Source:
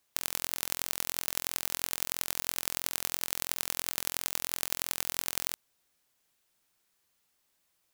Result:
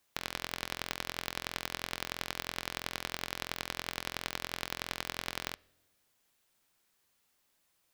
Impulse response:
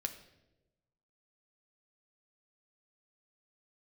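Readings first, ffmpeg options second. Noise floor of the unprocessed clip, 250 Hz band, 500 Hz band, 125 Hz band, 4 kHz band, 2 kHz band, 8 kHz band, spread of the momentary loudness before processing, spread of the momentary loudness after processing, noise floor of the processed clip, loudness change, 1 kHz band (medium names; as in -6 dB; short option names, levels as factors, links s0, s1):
-75 dBFS, +2.0 dB, +1.5 dB, +2.0 dB, -2.0 dB, +1.5 dB, -11.5 dB, 1 LU, 1 LU, -75 dBFS, -6.5 dB, +2.0 dB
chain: -filter_complex "[0:a]acrossover=split=5100[s0][s1];[s1]acompressor=threshold=0.0112:ratio=4:attack=1:release=60[s2];[s0][s2]amix=inputs=2:normalize=0,asplit=2[s3][s4];[1:a]atrim=start_sample=2205,lowpass=5100[s5];[s4][s5]afir=irnorm=-1:irlink=0,volume=0.224[s6];[s3][s6]amix=inputs=2:normalize=0"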